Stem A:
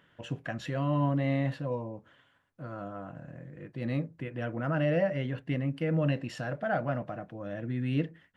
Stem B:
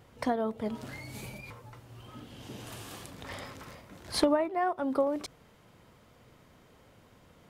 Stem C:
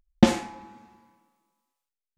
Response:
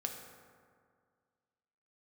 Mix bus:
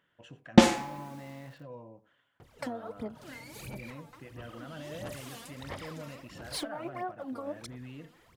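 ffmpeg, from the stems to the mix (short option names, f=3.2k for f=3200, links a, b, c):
-filter_complex "[0:a]alimiter=level_in=1.5dB:limit=-24dB:level=0:latency=1:release=54,volume=-1.5dB,volume=-9dB,asplit=2[a][b];[b]volume=-17.5dB[c];[1:a]aphaser=in_gain=1:out_gain=1:delay=4.4:decay=0.78:speed=1.5:type=sinusoidal,acompressor=threshold=-28dB:ratio=12,adelay=2400,volume=-4.5dB[d];[2:a]acrusher=bits=9:mix=0:aa=0.000001,adelay=350,volume=2.5dB[e];[c]aecho=0:1:89:1[f];[a][d][e][f]amix=inputs=4:normalize=0,lowshelf=f=250:g=-5.5"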